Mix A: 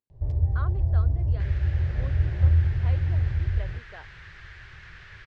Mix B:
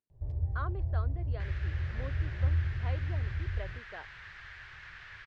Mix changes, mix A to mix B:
first sound -9.0 dB; master: add treble shelf 4.9 kHz -5.5 dB

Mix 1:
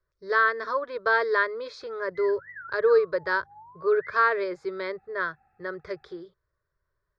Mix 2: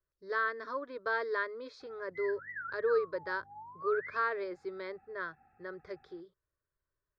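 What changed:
speech -10.5 dB; master: add peaking EQ 270 Hz +13.5 dB 0.38 oct

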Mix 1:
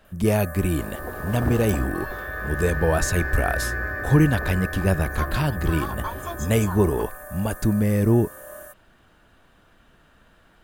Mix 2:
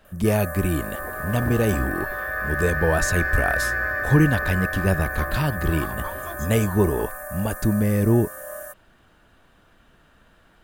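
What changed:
first sound +5.0 dB; second sound -4.0 dB

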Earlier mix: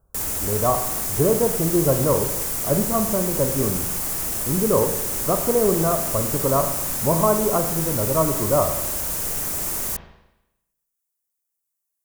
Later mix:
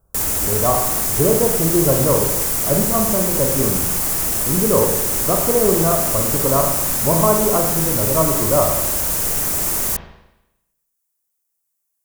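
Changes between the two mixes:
speech: send +6.0 dB; background +6.0 dB

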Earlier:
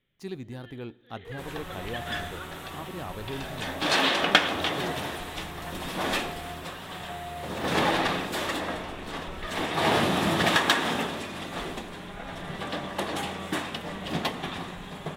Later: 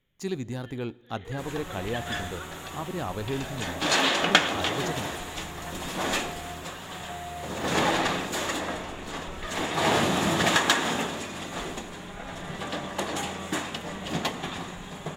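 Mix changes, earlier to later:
speech +5.5 dB; master: add peaking EQ 6.9 kHz +11.5 dB 0.26 oct

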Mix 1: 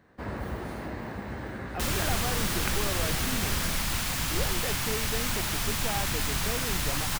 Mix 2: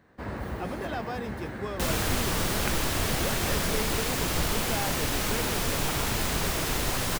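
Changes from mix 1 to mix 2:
speech: entry -1.15 s; second sound: add peaking EQ 430 Hz +13 dB 1.3 oct

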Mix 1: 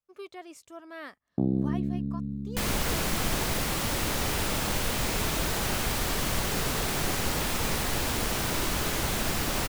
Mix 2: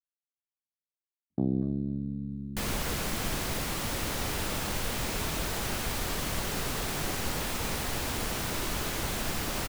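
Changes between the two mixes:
speech: muted; reverb: off

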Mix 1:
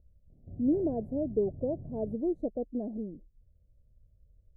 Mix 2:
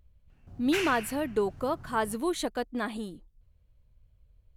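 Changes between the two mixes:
background -4.5 dB; master: remove elliptic low-pass 620 Hz, stop band 50 dB

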